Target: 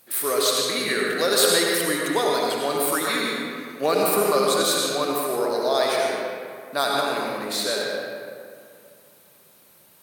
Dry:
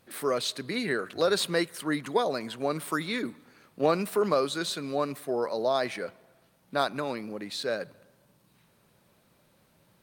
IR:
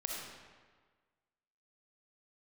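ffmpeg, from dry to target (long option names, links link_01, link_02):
-filter_complex "[0:a]aemphasis=mode=production:type=bsi[link_01];[1:a]atrim=start_sample=2205,asetrate=28665,aresample=44100[link_02];[link_01][link_02]afir=irnorm=-1:irlink=0,volume=2.5dB"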